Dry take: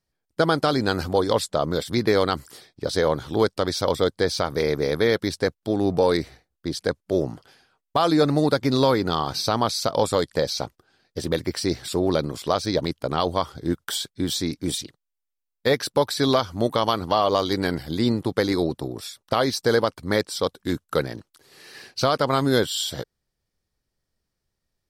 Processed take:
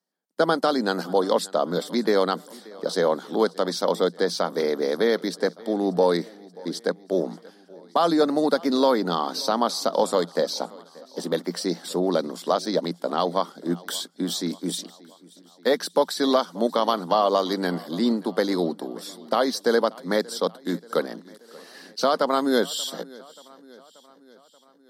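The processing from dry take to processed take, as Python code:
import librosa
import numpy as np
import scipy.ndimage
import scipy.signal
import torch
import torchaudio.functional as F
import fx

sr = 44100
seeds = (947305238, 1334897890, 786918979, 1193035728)

p1 = scipy.signal.sosfilt(scipy.signal.cheby1(6, 3, 170.0, 'highpass', fs=sr, output='sos'), x)
p2 = fx.peak_eq(p1, sr, hz=2400.0, db=-8.5, octaves=0.34)
p3 = p2 + fx.echo_feedback(p2, sr, ms=582, feedback_pct=59, wet_db=-22.5, dry=0)
y = F.gain(torch.from_numpy(p3), 1.0).numpy()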